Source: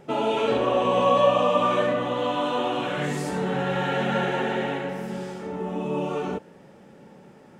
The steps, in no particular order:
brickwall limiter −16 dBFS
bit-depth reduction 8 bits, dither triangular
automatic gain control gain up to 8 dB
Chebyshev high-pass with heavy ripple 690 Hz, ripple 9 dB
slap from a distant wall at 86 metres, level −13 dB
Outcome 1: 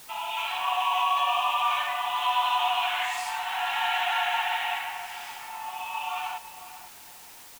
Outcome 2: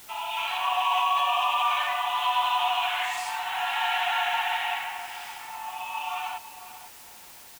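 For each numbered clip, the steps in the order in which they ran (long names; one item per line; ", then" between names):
automatic gain control, then Chebyshev high-pass with heavy ripple, then brickwall limiter, then slap from a distant wall, then bit-depth reduction
Chebyshev high-pass with heavy ripple, then automatic gain control, then brickwall limiter, then bit-depth reduction, then slap from a distant wall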